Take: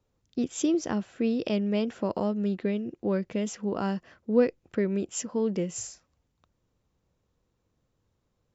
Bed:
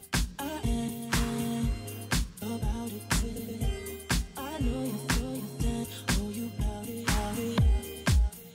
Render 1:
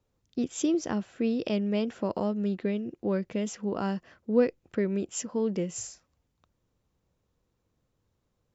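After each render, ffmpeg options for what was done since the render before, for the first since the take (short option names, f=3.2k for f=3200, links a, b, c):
-af "volume=-1dB"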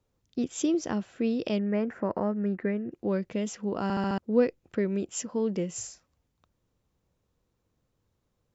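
-filter_complex "[0:a]asettb=1/sr,asplit=3[a][b][c];[a]atrim=end=1.594[d];[b]atrim=start=1.59:end=2.92,asetpts=PTS-STARTPTS,afade=t=in:d=0.004:c=qsin,afade=t=out:st=1.326:d=0.004:c=qsin,highshelf=f=2.5k:t=q:w=3:g=-10.5[e];[c]atrim=start=2.916[f];[d][e]acrossfade=d=0.004:c1=hsin:c2=qsin[g];[g][f]acrossfade=d=0.004:c1=qsin:c2=hsin,asplit=6[h][i][j][k][l][m];[h]atrim=end=3.902[n];[i]atrim=start=3.828:end=3.902[o];[j]atrim=start=3.828:end=3.902[p];[k]atrim=start=3.828:end=3.902[q];[l]atrim=start=3.828:end=3.902[r];[m]atrim=start=4.178[s];[n][o]acrossfade=d=0.004:c1=hsin:c2=hsin[t];[t][p]acrossfade=d=0.004:c1=hsin:c2=hsin[u];[u][q]acrossfade=d=0.004:c1=hsin:c2=hsin[v];[v][r]acrossfade=d=0.004:c1=hsin:c2=hsin[w];[w][s]acrossfade=d=0.004:c1=hsin:c2=hsin"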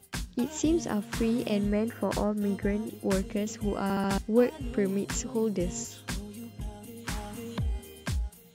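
-filter_complex "[1:a]volume=-7dB[a];[0:a][a]amix=inputs=2:normalize=0"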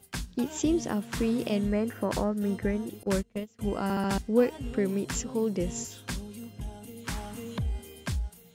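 -filter_complex "[0:a]asettb=1/sr,asplit=3[a][b][c];[a]atrim=end=3.034[d];[b]atrim=start=3.03:end=3.59,asetpts=PTS-STARTPTS,afade=t=in:d=0.004:c=qsin,afade=t=out:st=0.556:d=0.004:c=qsin,agate=range=-25dB:threshold=-29dB:ratio=16:release=100:detection=peak[e];[c]atrim=start=3.586[f];[d][e]acrossfade=d=0.004:c1=hsin:c2=qsin[g];[g][f]acrossfade=d=0.004:c1=qsin:c2=hsin"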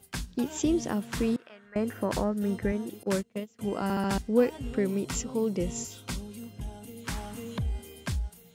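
-filter_complex "[0:a]asettb=1/sr,asplit=3[a][b][c];[a]atrim=end=1.364[d];[b]atrim=start=1.36:end=1.76,asetpts=PTS-STARTPTS,afade=t=in:d=0.004:c=qsin,afade=t=out:st=0.396:d=0.004:c=qsin,bandpass=f=1.5k:t=q:w=4.4[e];[c]atrim=start=1.756[f];[d][e]acrossfade=d=0.004:c1=hsin:c2=qsin[g];[g][f]acrossfade=d=0.004:c1=qsin:c2=hsin,asettb=1/sr,asplit=3[h][i][j];[h]atrim=end=2.724[k];[i]atrim=start=2.72:end=3.82,asetpts=PTS-STARTPTS,afade=t=in:d=0.004:c=qsin,afade=t=out:st=1.096:d=0.004:c=qsin,highpass=140[l];[j]atrim=start=3.816[m];[k][l]acrossfade=d=0.004:c1=hsin:c2=qsin[n];[n][m]acrossfade=d=0.004:c1=qsin:c2=hsin,asettb=1/sr,asplit=3[o][p][q];[o]atrim=end=4.884[r];[p]atrim=start=4.88:end=6.2,asetpts=PTS-STARTPTS,afade=t=in:d=0.004:c=qsin,afade=t=out:st=1.316:d=0.004:c=qsin,asuperstop=centerf=1700:order=8:qfactor=7.3[s];[q]atrim=start=6.196[t];[r][s]acrossfade=d=0.004:c1=hsin:c2=qsin[u];[u][t]acrossfade=d=0.004:c1=qsin:c2=hsin"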